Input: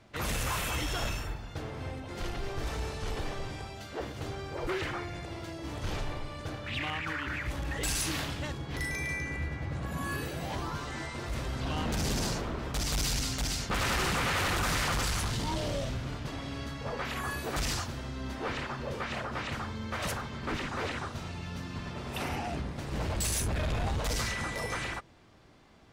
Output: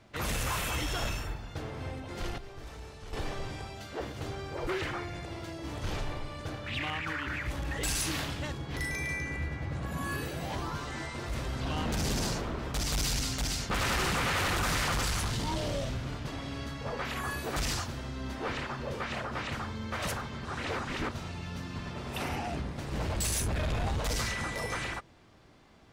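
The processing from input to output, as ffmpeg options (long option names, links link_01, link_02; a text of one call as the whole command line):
ffmpeg -i in.wav -filter_complex "[0:a]asplit=5[link_01][link_02][link_03][link_04][link_05];[link_01]atrim=end=2.382[link_06];[link_02]atrim=start=2.378:end=3.132,asetpts=PTS-STARTPTS,volume=-10dB[link_07];[link_03]atrim=start=3.128:end=20.452[link_08];[link_04]atrim=start=20.448:end=21.112,asetpts=PTS-STARTPTS,areverse[link_09];[link_05]atrim=start=21.108[link_10];[link_06][link_07]acrossfade=duration=0.004:curve1=hsin:curve2=hsin[link_11];[link_11][link_08]acrossfade=duration=0.004:curve1=hsin:curve2=hsin[link_12];[link_12][link_09]acrossfade=duration=0.004:curve1=hsin:curve2=hsin[link_13];[link_13][link_10]acrossfade=duration=0.004:curve1=hsin:curve2=hsin" out.wav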